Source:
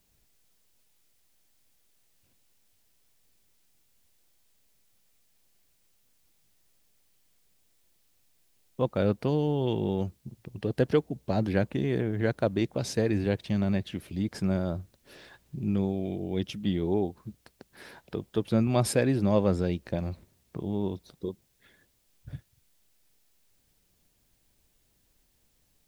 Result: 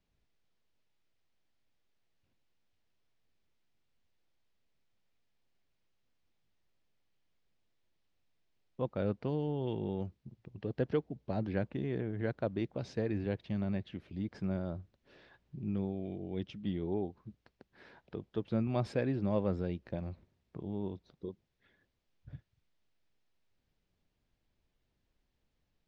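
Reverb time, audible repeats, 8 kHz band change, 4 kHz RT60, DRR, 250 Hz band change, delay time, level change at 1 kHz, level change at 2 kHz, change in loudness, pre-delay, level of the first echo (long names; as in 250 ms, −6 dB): no reverb audible, no echo audible, below −20 dB, no reverb audible, no reverb audible, −7.5 dB, no echo audible, −8.5 dB, −9.0 dB, −8.0 dB, no reverb audible, no echo audible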